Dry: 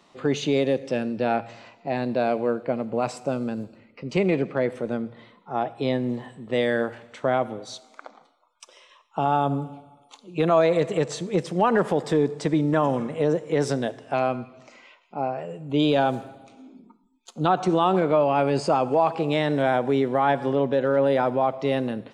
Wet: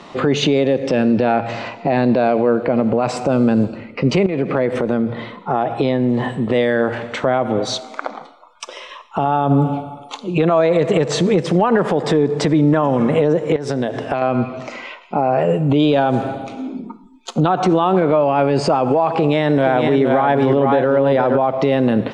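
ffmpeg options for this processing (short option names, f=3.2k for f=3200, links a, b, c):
-filter_complex "[0:a]asettb=1/sr,asplit=3[a][b][c];[a]atrim=end=4.264[d];[b]atrim=start=4.26:end=6.33,asetpts=PTS-STARTPTS,afade=t=in:d=0.004:c=qsin,afade=t=out:st=2.066:d=0.004:c=qsin,acompressor=threshold=-33dB:ratio=6:attack=3.2:release=140:knee=1:detection=peak[e];[c]atrim=start=6.326[f];[d][e]acrossfade=d=0.004:c1=hsin:c2=qsin[g];[g][f]acrossfade=d=0.004:c1=qsin:c2=hsin,asettb=1/sr,asplit=3[h][i][j];[h]atrim=end=13.564[k];[i]atrim=start=13.56:end=14.22,asetpts=PTS-STARTPTS,afade=t=in:d=0.004:c=qsin,afade=t=out:st=0.656:d=0.004:c=qsin,acompressor=threshold=-34dB:ratio=20:attack=3.2:release=140:knee=1:detection=peak[l];[j]atrim=start=14.216[m];[k][l]acrossfade=d=0.004:c1=hsin:c2=qsin[n];[n][m]acrossfade=d=0.004:c1=qsin:c2=hsin,asettb=1/sr,asplit=3[o][p][q];[o]atrim=end=19.134[r];[p]atrim=start=19.13:end=21.38,asetpts=PTS-STARTPTS,afade=t=in:d=0.004:c=qsin,afade=t=out:st=2.246:d=0.004:c=qsin,aecho=1:1:468:0.473,atrim=end_sample=99225[s];[q]atrim=start=21.376[t];[r][s]acrossfade=d=0.004:c1=hsin:c2=qsin[u];[u][t]acrossfade=d=0.004:c1=qsin:c2=hsin,aemphasis=mode=reproduction:type=50fm,acompressor=threshold=-27dB:ratio=6,alimiter=level_in=25dB:limit=-1dB:release=50:level=0:latency=1,volume=-5.5dB"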